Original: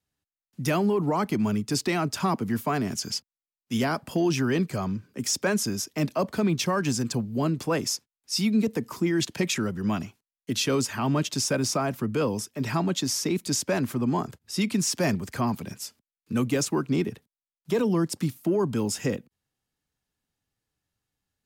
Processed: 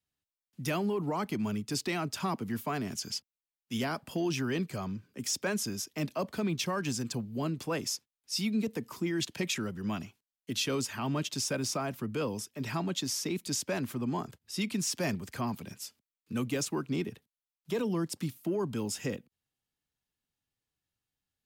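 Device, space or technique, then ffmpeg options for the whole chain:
presence and air boost: -af "equalizer=frequency=3100:width_type=o:width=1.1:gain=4,highshelf=frequency=11000:gain=4.5,volume=-7.5dB"

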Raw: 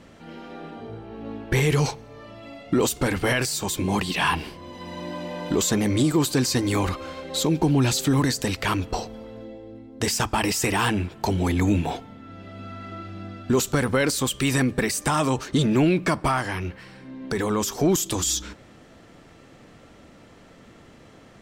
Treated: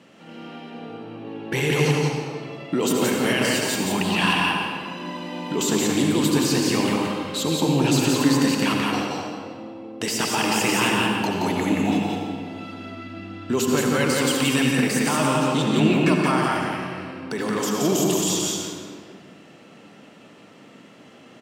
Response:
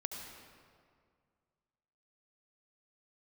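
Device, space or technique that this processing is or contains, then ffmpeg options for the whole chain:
stadium PA: -filter_complex "[0:a]asettb=1/sr,asplit=3[link_01][link_02][link_03];[link_01]atrim=end=11.924[link_04];[link_02]atrim=start=11.92:end=12.74,asetpts=PTS-STARTPTS,afade=type=in:duration=0.004:curve=qsin,afade=type=out:start_time=0.816:duration=0.004:curve=qsin,highshelf=frequency=4100:gain=9.5[link_05];[link_03]atrim=start=12.736[link_06];[link_04][link_05]acrossfade=duration=0.004:curve1=hsin:curve2=qsin[link_07];[link_07][link_06]acrossfade=duration=0.004:curve1=qsin:curve2=hsin,highpass=frequency=140:width=0.5412,highpass=frequency=140:width=1.3066,equalizer=frequency=2800:width_type=o:width=0.28:gain=7.5,aecho=1:1:174.9|218.7:0.708|0.251[link_08];[1:a]atrim=start_sample=2205[link_09];[link_08][link_09]afir=irnorm=-1:irlink=0"

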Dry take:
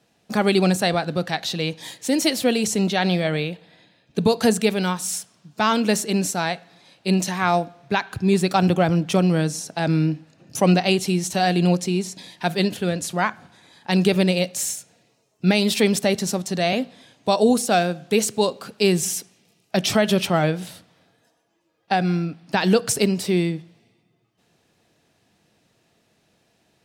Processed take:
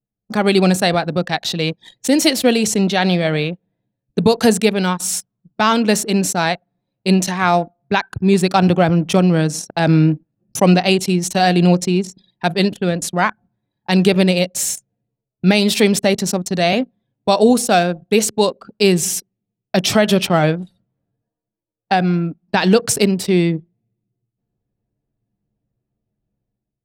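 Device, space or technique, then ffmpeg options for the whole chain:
voice memo with heavy noise removal: -af "anlmdn=25.1,dynaudnorm=framelen=150:gausssize=5:maxgain=10.5dB"

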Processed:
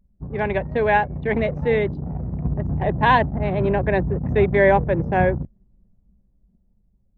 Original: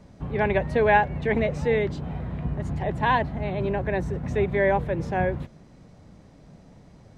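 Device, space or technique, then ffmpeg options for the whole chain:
voice memo with heavy noise removal: -af "anlmdn=15.8,dynaudnorm=framelen=260:gausssize=11:maxgain=7dB"

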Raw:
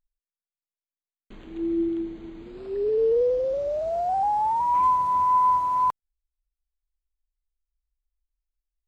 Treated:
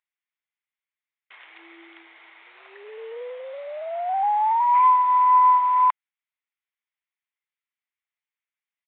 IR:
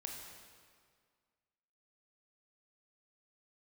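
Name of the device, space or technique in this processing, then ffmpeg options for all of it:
musical greeting card: -af "aresample=8000,aresample=44100,highpass=frequency=820:width=0.5412,highpass=frequency=820:width=1.3066,equalizer=frequency=2100:width_type=o:width=0.48:gain=10,volume=4.5dB"

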